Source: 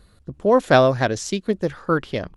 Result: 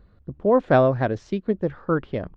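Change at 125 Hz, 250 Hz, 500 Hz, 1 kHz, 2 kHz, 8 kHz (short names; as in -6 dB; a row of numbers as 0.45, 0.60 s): -0.5 dB, -1.0 dB, -2.0 dB, -3.5 dB, -6.5 dB, under -20 dB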